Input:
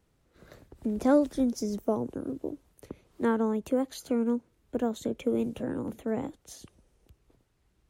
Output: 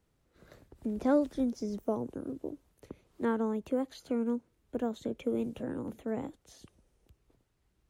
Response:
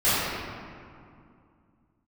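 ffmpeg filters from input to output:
-filter_complex "[0:a]acrossover=split=5000[a][b];[b]acompressor=threshold=-56dB:ratio=4:attack=1:release=60[c];[a][c]amix=inputs=2:normalize=0,volume=-4dB"

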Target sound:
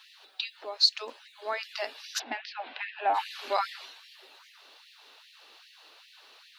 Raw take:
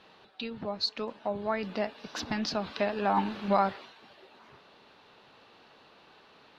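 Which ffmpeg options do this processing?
-filter_complex "[0:a]asplit=3[a][b][c];[a]afade=t=out:st=2.18:d=0.02[d];[b]highpass=120,equalizer=f=220:t=q:w=4:g=8,equalizer=f=430:t=q:w=4:g=-4,equalizer=f=740:t=q:w=4:g=9,equalizer=f=1.2k:t=q:w=4:g=-9,lowpass=f=2.7k:w=0.5412,lowpass=f=2.7k:w=1.3066,afade=t=in:st=2.18:d=0.02,afade=t=out:st=3.13:d=0.02[e];[c]afade=t=in:st=3.13:d=0.02[f];[d][e][f]amix=inputs=3:normalize=0,crystalizer=i=7:c=0,afftfilt=real='re*gte(b*sr/1024,220*pow(1800/220,0.5+0.5*sin(2*PI*2.5*pts/sr)))':imag='im*gte(b*sr/1024,220*pow(1800/220,0.5+0.5*sin(2*PI*2.5*pts/sr)))':win_size=1024:overlap=0.75,volume=-4.5dB"

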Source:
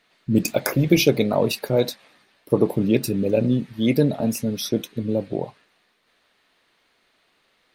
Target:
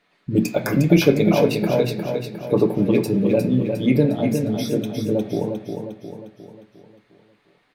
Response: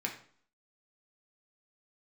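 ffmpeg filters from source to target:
-filter_complex "[0:a]highshelf=f=2.9k:g=-8,aecho=1:1:356|712|1068|1424|1780|2136:0.501|0.251|0.125|0.0626|0.0313|0.0157,asplit=2[a][b];[1:a]atrim=start_sample=2205,adelay=7[c];[b][c]afir=irnorm=-1:irlink=0,volume=-6.5dB[d];[a][d]amix=inputs=2:normalize=0"

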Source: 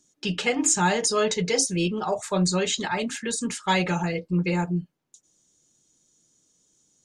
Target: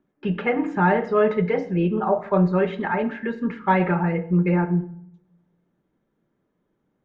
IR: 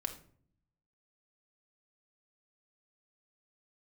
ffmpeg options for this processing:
-filter_complex "[0:a]lowpass=f=1.9k:w=0.5412,lowpass=f=1.9k:w=1.3066,asplit=2[a][b];[1:a]atrim=start_sample=2205,asetrate=31311,aresample=44100,lowshelf=f=120:g=-7.5[c];[b][c]afir=irnorm=-1:irlink=0,volume=-1.5dB[d];[a][d]amix=inputs=2:normalize=0,volume=-1.5dB"

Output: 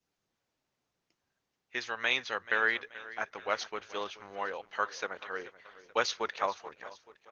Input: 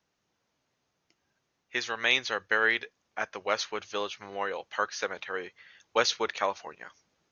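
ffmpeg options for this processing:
-filter_complex "[0:a]asplit=2[a][b];[b]aecho=0:1:432|864|1296|1728:0.15|0.0748|0.0374|0.0187[c];[a][c]amix=inputs=2:normalize=0,adynamicequalizer=threshold=0.0158:dfrequency=1200:dqfactor=1:tfrequency=1200:tqfactor=1:attack=5:release=100:ratio=0.375:range=2:mode=boostabove:tftype=bell,volume=-5dB" -ar 48000 -c:a libopus -b:a 16k

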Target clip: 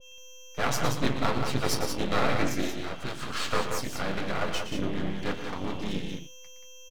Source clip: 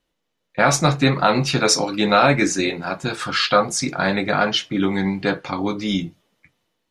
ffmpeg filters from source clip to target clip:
-filter_complex "[0:a]aeval=exprs='val(0)+0.0158*sin(2*PI*3200*n/s)':c=same,asplit=2[a][b];[b]asetrate=37084,aresample=44100,atempo=1.18921,volume=-4dB[c];[a][c]amix=inputs=2:normalize=0,aeval=exprs='max(val(0),0)':c=same,asplit=2[d][e];[e]aecho=0:1:116.6|180.8:0.316|0.501[f];[d][f]amix=inputs=2:normalize=0,adynamicequalizer=threshold=0.0251:dfrequency=1500:dqfactor=0.7:tfrequency=1500:tqfactor=0.7:attack=5:release=100:ratio=0.375:range=1.5:mode=cutabove:tftype=highshelf,volume=-8dB"

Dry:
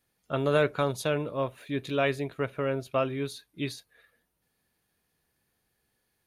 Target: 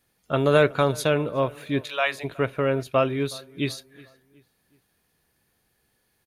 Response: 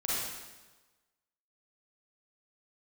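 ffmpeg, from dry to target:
-filter_complex "[0:a]asplit=3[a][b][c];[a]afade=t=out:st=1.81:d=0.02[d];[b]highpass=f=680:w=0.5412,highpass=f=680:w=1.3066,afade=t=in:st=1.81:d=0.02,afade=t=out:st=2.23:d=0.02[e];[c]afade=t=in:st=2.23:d=0.02[f];[d][e][f]amix=inputs=3:normalize=0,asplit=2[g][h];[h]adelay=369,lowpass=f=3.2k:p=1,volume=-22.5dB,asplit=2[i][j];[j]adelay=369,lowpass=f=3.2k:p=1,volume=0.43,asplit=2[k][l];[l]adelay=369,lowpass=f=3.2k:p=1,volume=0.43[m];[g][i][k][m]amix=inputs=4:normalize=0,volume=6dB"

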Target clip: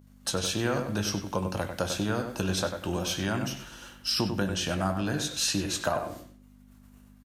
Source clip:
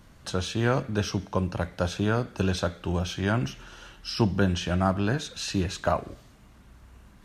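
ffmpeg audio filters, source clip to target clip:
-filter_complex "[0:a]agate=range=-33dB:threshold=-42dB:ratio=3:detection=peak,asplit=2[a][b];[b]adelay=20,volume=-11dB[c];[a][c]amix=inputs=2:normalize=0,acompressor=threshold=-26dB:ratio=3,lowshelf=f=430:g=7,aeval=exprs='val(0)+0.00708*(sin(2*PI*50*n/s)+sin(2*PI*2*50*n/s)/2+sin(2*PI*3*50*n/s)/3+sin(2*PI*4*50*n/s)/4+sin(2*PI*5*50*n/s)/5)':c=same,aemphasis=mode=production:type=bsi,bandreject=f=410:w=12,asplit=2[d][e];[e]adelay=96,lowpass=f=2.5k:p=1,volume=-6.5dB,asplit=2[f][g];[g]adelay=96,lowpass=f=2.5k:p=1,volume=0.27,asplit=2[h][i];[i]adelay=96,lowpass=f=2.5k:p=1,volume=0.27[j];[f][h][j]amix=inputs=3:normalize=0[k];[d][k]amix=inputs=2:normalize=0"

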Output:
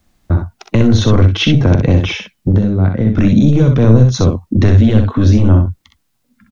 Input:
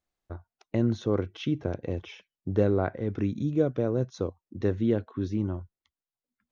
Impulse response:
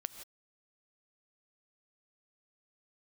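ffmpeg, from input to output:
-filter_complex "[0:a]acrossover=split=220|3000[a][b][c];[b]acompressor=threshold=-30dB:ratio=6[d];[a][d][c]amix=inputs=3:normalize=0,lowshelf=f=310:t=q:w=1.5:g=7.5,asettb=1/sr,asplit=3[e][f][g];[e]atrim=end=2.524[h];[f]atrim=start=2.52:end=3.17,asetpts=PTS-STARTPTS,afade=t=in:d=0.004:c=qsin,afade=t=out:st=0.646:d=0.004:c=qsin,acompressor=threshold=-33dB:ratio=6[i];[g]atrim=start=3.166[j];[h][i]acrossfade=d=0.004:c1=hsin:c2=qsin[k];[k][j]acrossfade=d=0.004:c1=qsin:c2=hsin,apsyclip=29.5dB,asplit=2[l][m];[m]aecho=0:1:45|63:0.168|0.531[n];[l][n]amix=inputs=2:normalize=0,volume=-6dB"

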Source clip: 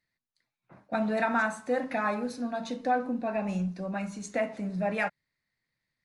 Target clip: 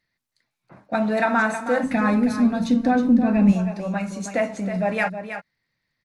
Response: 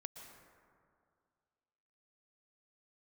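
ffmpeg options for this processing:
-filter_complex "[0:a]aecho=1:1:319:0.335,asplit=3[a][b][c];[a]afade=t=out:st=1.82:d=0.02[d];[b]asubboost=boost=9:cutoff=230,afade=t=in:st=1.82:d=0.02,afade=t=out:st=3.51:d=0.02[e];[c]afade=t=in:st=3.51:d=0.02[f];[d][e][f]amix=inputs=3:normalize=0,volume=6.5dB" -ar 48000 -c:a sbc -b:a 128k

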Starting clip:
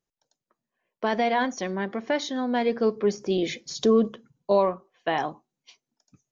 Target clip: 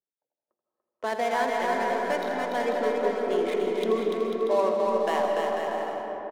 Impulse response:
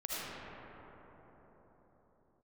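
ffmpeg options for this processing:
-filter_complex "[0:a]highpass=150,bass=f=250:g=-14,treble=f=4k:g=-7,bandreject=f=50:t=h:w=6,bandreject=f=100:t=h:w=6,bandreject=f=150:t=h:w=6,bandreject=f=200:t=h:w=6,bandreject=f=250:t=h:w=6,bandreject=f=300:t=h:w=6,bandreject=f=350:t=h:w=6,bandreject=f=400:t=h:w=6,bandreject=f=450:t=h:w=6,adynamicsmooth=sensitivity=8:basefreq=550,aecho=1:1:290|493|635.1|734.6|804.2:0.631|0.398|0.251|0.158|0.1,asplit=2[a][b];[1:a]atrim=start_sample=2205,adelay=82[c];[b][c]afir=irnorm=-1:irlink=0,volume=-6dB[d];[a][d]amix=inputs=2:normalize=0,volume=-3dB"

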